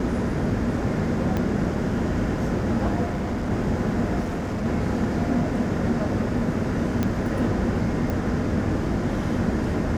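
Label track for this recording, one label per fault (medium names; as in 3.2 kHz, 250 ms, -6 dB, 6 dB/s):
1.370000	1.370000	pop -13 dBFS
3.050000	3.510000	clipped -23 dBFS
4.200000	4.660000	clipped -23.5 dBFS
7.030000	7.030000	pop -11 dBFS
8.100000	8.100000	pop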